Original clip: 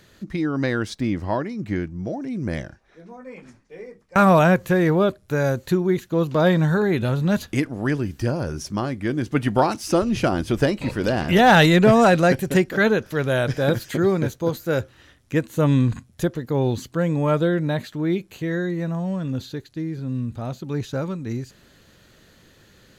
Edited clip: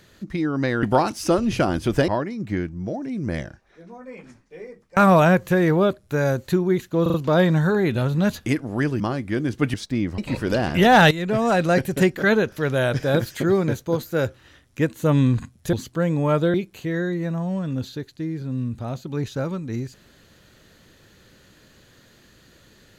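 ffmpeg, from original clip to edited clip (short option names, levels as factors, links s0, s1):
-filter_complex "[0:a]asplit=12[s0][s1][s2][s3][s4][s5][s6][s7][s8][s9][s10][s11];[s0]atrim=end=0.832[s12];[s1]atrim=start=9.468:end=10.722[s13];[s2]atrim=start=1.268:end=6.252[s14];[s3]atrim=start=6.208:end=6.252[s15];[s4]atrim=start=6.208:end=6.252[s16];[s5]atrim=start=6.208:end=8.072[s17];[s6]atrim=start=8.728:end=9.472[s18];[s7]atrim=start=0.828:end=1.272[s19];[s8]atrim=start=10.718:end=11.65,asetpts=PTS-STARTPTS,afade=t=out:st=0.928:d=0.004:c=hsin:silence=0.158489[s20];[s9]atrim=start=11.65:end=16.272,asetpts=PTS-STARTPTS,afade=t=in:d=0.81:silence=0.158489[s21];[s10]atrim=start=16.718:end=17.532[s22];[s11]atrim=start=18.108[s23];[s12][s13]acrossfade=d=0.004:c1=hsin:c2=hsin[s24];[s24][s14]acrossfade=d=0.004:c1=hsin:c2=hsin[s25];[s25][s15]acrossfade=d=0.004:c1=hsin:c2=hsin[s26];[s26][s16]acrossfade=d=0.004:c1=hsin:c2=hsin[s27];[s27][s17]acrossfade=d=0.004:c1=hsin:c2=hsin[s28];[s28][s18]acrossfade=d=0.004:c1=hsin:c2=hsin[s29];[s29][s19]acrossfade=d=0.004:c1=hsin:c2=hsin[s30];[s20][s21]concat=n=2:v=0:a=1[s31];[s30][s31]acrossfade=d=0.004:c1=hsin:c2=hsin[s32];[s32][s22]acrossfade=d=0.004:c1=hsin:c2=hsin[s33];[s33][s23]acrossfade=d=0.004:c1=hsin:c2=hsin"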